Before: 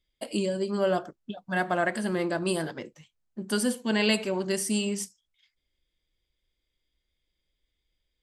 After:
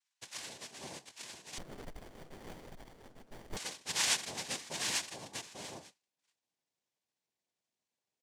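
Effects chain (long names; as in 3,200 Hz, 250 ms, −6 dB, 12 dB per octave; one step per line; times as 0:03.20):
band-pass filter sweep 6,100 Hz → 960 Hz, 0:02.66–0:05.37
on a send: single-tap delay 847 ms −4.5 dB
on the sum: cochlear-implant simulation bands 2
in parallel at −2 dB: downward compressor, threshold −47 dBFS, peak gain reduction 19 dB
on the sum: parametric band 1,300 Hz −9.5 dB 0.21 octaves
0:01.58–0:03.57: windowed peak hold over 33 samples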